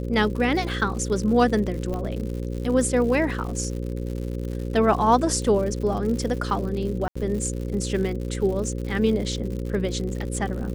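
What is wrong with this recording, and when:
buzz 60 Hz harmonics 9 -29 dBFS
crackle 120/s -32 dBFS
1.94 pop -19 dBFS
7.08–7.16 gap 75 ms

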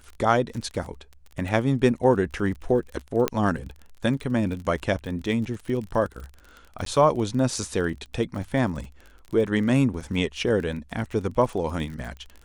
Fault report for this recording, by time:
crackle 31/s -33 dBFS
3.28 pop -8 dBFS
6.85–6.86 gap

